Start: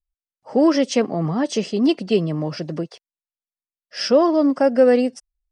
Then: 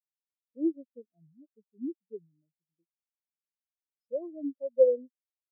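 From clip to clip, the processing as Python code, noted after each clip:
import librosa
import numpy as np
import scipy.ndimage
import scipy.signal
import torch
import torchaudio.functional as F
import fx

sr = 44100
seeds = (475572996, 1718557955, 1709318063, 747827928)

y = fx.spectral_expand(x, sr, expansion=4.0)
y = y * 10.0 ** (-7.0 / 20.0)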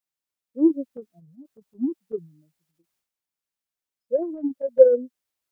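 y = fx.rider(x, sr, range_db=3, speed_s=2.0)
y = fx.transient(y, sr, attack_db=7, sustain_db=11)
y = y * 10.0 ** (2.5 / 20.0)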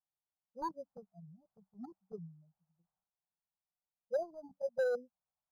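y = np.clip(x, -10.0 ** (-17.5 / 20.0), 10.0 ** (-17.5 / 20.0))
y = fx.curve_eq(y, sr, hz=(110.0, 190.0, 280.0, 760.0, 1500.0, 2300.0), db=(0, 4, -26, 5, -7, -27))
y = np.interp(np.arange(len(y)), np.arange(len(y))[::8], y[::8])
y = y * 10.0 ** (-4.0 / 20.0)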